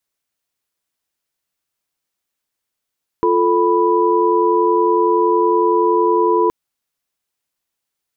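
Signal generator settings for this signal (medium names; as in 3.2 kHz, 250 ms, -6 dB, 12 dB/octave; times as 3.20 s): chord F4/A4/B5 sine, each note -16 dBFS 3.27 s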